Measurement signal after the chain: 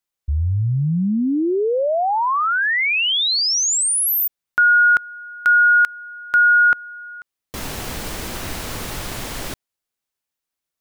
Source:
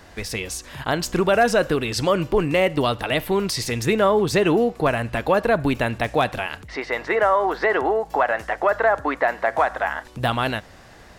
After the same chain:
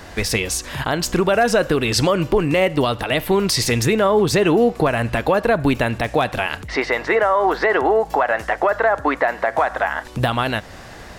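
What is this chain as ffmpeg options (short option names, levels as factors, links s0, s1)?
-af "alimiter=limit=0.158:level=0:latency=1:release=290,volume=2.66"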